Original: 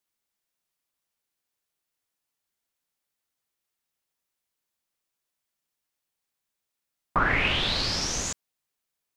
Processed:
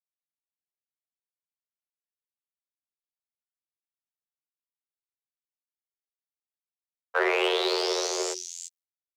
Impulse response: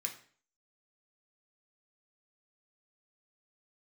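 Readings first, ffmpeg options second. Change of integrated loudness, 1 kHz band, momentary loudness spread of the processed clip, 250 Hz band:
-1.0 dB, -2.0 dB, 14 LU, n/a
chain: -filter_complex "[0:a]equalizer=f=1.3k:w=4.5:g=-4.5,asoftclip=type=hard:threshold=-19.5dB,afftfilt=real='hypot(re,im)*cos(PI*b)':imag='0':win_size=2048:overlap=0.75,afreqshift=370,agate=range=-33dB:threshold=-47dB:ratio=3:detection=peak,equalizer=f=320:w=0.35:g=8,acrossover=split=270|3400[a][b][c];[c]aecho=1:1:344:0.631[d];[a][b][d]amix=inputs=3:normalize=0"

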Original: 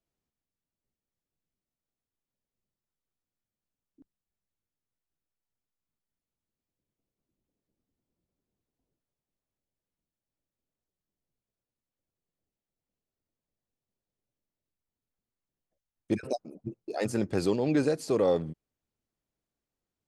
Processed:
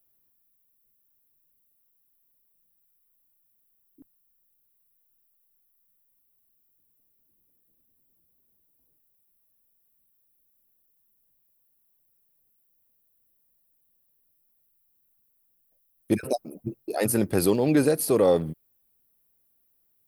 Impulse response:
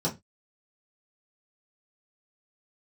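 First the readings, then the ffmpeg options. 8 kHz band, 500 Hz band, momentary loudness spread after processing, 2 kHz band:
+13.5 dB, +5.0 dB, 13 LU, +5.0 dB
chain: -af "aexciter=amount=11.5:drive=6.5:freq=10k,volume=5dB"

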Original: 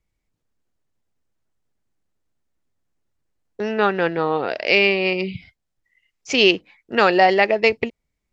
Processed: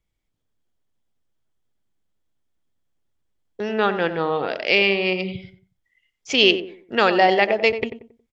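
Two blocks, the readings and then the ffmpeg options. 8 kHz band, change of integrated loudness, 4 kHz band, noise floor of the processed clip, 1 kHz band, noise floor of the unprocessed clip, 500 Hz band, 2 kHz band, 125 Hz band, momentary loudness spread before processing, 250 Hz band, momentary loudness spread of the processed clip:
n/a, -1.0 dB, +1.5 dB, -77 dBFS, -1.5 dB, -78 dBFS, -1.5 dB, -1.5 dB, -1.0 dB, 11 LU, -1.5 dB, 13 LU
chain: -filter_complex "[0:a]equalizer=f=3.3k:w=7.1:g=8.5,asplit=2[a][b];[b]adelay=91,lowpass=f=1.2k:p=1,volume=-9dB,asplit=2[c][d];[d]adelay=91,lowpass=f=1.2k:p=1,volume=0.35,asplit=2[e][f];[f]adelay=91,lowpass=f=1.2k:p=1,volume=0.35,asplit=2[g][h];[h]adelay=91,lowpass=f=1.2k:p=1,volume=0.35[i];[c][e][g][i]amix=inputs=4:normalize=0[j];[a][j]amix=inputs=2:normalize=0,volume=-2dB"

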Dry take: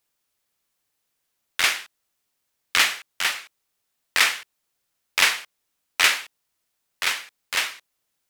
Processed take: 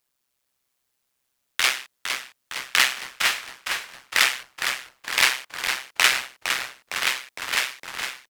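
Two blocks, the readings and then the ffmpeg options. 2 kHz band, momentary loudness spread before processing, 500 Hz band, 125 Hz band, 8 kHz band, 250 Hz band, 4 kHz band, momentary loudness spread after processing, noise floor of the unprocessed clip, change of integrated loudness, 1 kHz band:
+1.0 dB, 12 LU, +1.5 dB, n/a, +1.0 dB, +2.0 dB, +1.0 dB, 11 LU, -77 dBFS, -1.0 dB, +1.5 dB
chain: -filter_complex "[0:a]tremolo=f=130:d=0.824,asplit=2[a][b];[b]asplit=8[c][d][e][f][g][h][i][j];[c]adelay=459,afreqshift=-110,volume=-7dB[k];[d]adelay=918,afreqshift=-220,volume=-11.4dB[l];[e]adelay=1377,afreqshift=-330,volume=-15.9dB[m];[f]adelay=1836,afreqshift=-440,volume=-20.3dB[n];[g]adelay=2295,afreqshift=-550,volume=-24.7dB[o];[h]adelay=2754,afreqshift=-660,volume=-29.2dB[p];[i]adelay=3213,afreqshift=-770,volume=-33.6dB[q];[j]adelay=3672,afreqshift=-880,volume=-38.1dB[r];[k][l][m][n][o][p][q][r]amix=inputs=8:normalize=0[s];[a][s]amix=inputs=2:normalize=0,volume=3.5dB"

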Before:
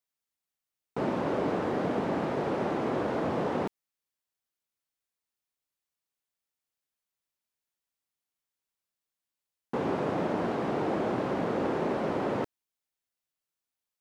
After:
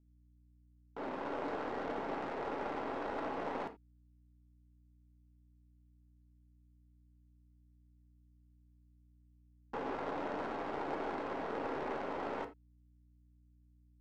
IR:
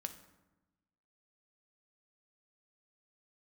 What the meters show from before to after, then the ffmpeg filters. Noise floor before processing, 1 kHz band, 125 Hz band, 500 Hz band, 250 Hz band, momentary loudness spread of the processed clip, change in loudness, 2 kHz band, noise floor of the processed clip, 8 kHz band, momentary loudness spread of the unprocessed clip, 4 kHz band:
under -85 dBFS, -6.0 dB, -17.0 dB, -10.0 dB, -12.5 dB, 4 LU, -9.5 dB, -5.5 dB, -66 dBFS, n/a, 4 LU, -8.0 dB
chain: -filter_complex "[0:a]aderivative,dynaudnorm=f=370:g=5:m=5.5dB,aeval=exprs='val(0)+0.000224*(sin(2*PI*60*n/s)+sin(2*PI*2*60*n/s)/2+sin(2*PI*3*60*n/s)/3+sin(2*PI*4*60*n/s)/4+sin(2*PI*5*60*n/s)/5)':c=same,aeval=exprs='(tanh(39.8*val(0)+0.6)-tanh(0.6))/39.8':c=same,adynamicsmooth=sensitivity=6.5:basefreq=860[a];[1:a]atrim=start_sample=2205,atrim=end_sample=6174,asetrate=66150,aresample=44100[b];[a][b]afir=irnorm=-1:irlink=0,volume=17.5dB"

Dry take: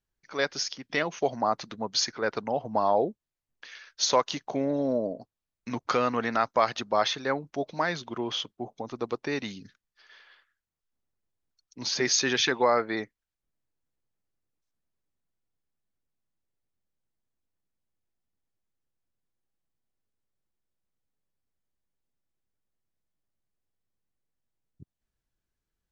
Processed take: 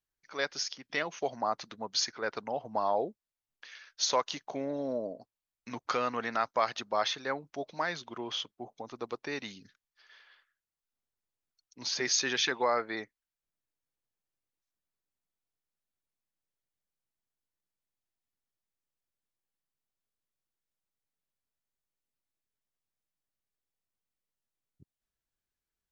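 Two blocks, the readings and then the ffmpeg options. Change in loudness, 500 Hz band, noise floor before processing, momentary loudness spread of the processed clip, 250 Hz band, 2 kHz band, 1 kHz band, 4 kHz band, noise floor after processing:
-5.0 dB, -6.0 dB, under -85 dBFS, 14 LU, -8.5 dB, -4.0 dB, -4.5 dB, -3.5 dB, under -85 dBFS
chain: -af "lowshelf=f=420:g=-7,volume=-3.5dB"

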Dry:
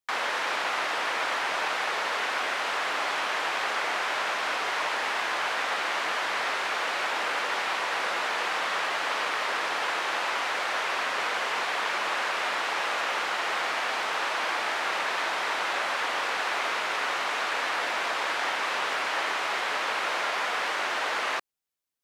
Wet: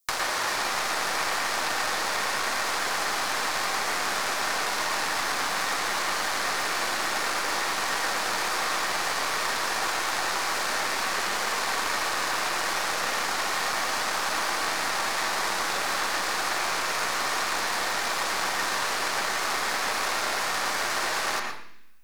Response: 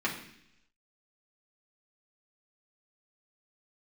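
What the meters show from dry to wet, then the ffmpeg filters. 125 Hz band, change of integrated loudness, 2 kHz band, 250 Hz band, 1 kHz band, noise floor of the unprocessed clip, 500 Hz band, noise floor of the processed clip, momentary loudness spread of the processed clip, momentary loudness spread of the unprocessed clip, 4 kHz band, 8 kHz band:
n/a, +1.5 dB, 0.0 dB, +4.5 dB, +0.5 dB, -30 dBFS, 0.0 dB, -29 dBFS, 0 LU, 0 LU, +2.5 dB, +10.0 dB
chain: -filter_complex "[0:a]aexciter=amount=3.3:drive=7.7:freq=4.2k,aeval=exprs='0.224*(cos(1*acos(clip(val(0)/0.224,-1,1)))-cos(1*PI/2))+0.0355*(cos(4*acos(clip(val(0)/0.224,-1,1)))-cos(4*PI/2))+0.0158*(cos(7*acos(clip(val(0)/0.224,-1,1)))-cos(7*PI/2))':c=same,acrossover=split=230|1700[a][b][c];[a]acompressor=threshold=-53dB:ratio=4[d];[b]acompressor=threshold=-38dB:ratio=4[e];[c]acompressor=threshold=-39dB:ratio=4[f];[d][e][f]amix=inputs=3:normalize=0,asplit=2[g][h];[1:a]atrim=start_sample=2205,adelay=110[i];[h][i]afir=irnorm=-1:irlink=0,volume=-9.5dB[j];[g][j]amix=inputs=2:normalize=0,volume=7dB"

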